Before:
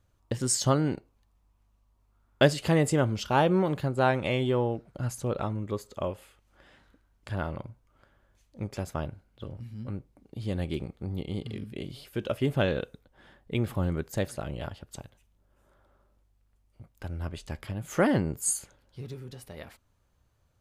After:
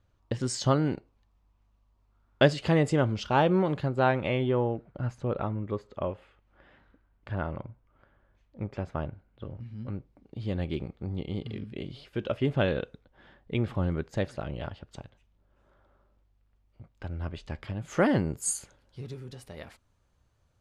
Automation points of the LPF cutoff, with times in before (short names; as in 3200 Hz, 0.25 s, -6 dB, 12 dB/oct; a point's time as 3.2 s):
3.78 s 5000 Hz
4.53 s 2500 Hz
9.47 s 2500 Hz
9.91 s 4200 Hz
17.53 s 4200 Hz
18.46 s 9300 Hz